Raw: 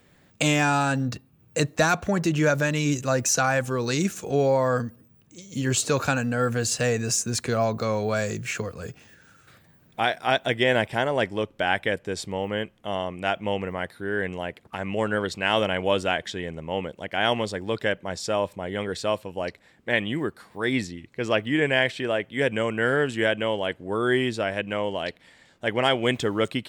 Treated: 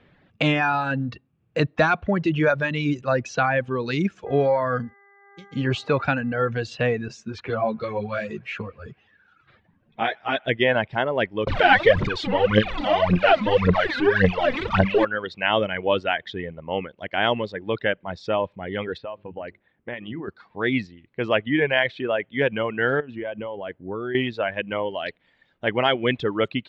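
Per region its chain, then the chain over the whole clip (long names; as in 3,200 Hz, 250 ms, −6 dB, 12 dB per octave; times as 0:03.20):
0:04.25–0:06.50: noise gate −45 dBFS, range −31 dB + hum with harmonics 400 Hz, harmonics 5, −48 dBFS −1 dB per octave
0:07.08–0:10.48: delay with a band-pass on its return 109 ms, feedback 70%, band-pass 1,600 Hz, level −19.5 dB + string-ensemble chorus
0:11.47–0:15.05: converter with a step at zero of −22.5 dBFS + phase shifter 1.8 Hz, delay 4.1 ms, feedback 69%
0:18.98–0:20.28: mains-hum notches 50/100/150/200/250/300/350/400 Hz + downward compressor 5 to 1, threshold −29 dBFS + high-frequency loss of the air 290 metres
0:23.00–0:24.15: low-pass filter 1,000 Hz 6 dB per octave + downward compressor 3 to 1, threshold −28 dBFS
whole clip: low-pass filter 3,500 Hz 24 dB per octave; reverb reduction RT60 1.2 s; level +2.5 dB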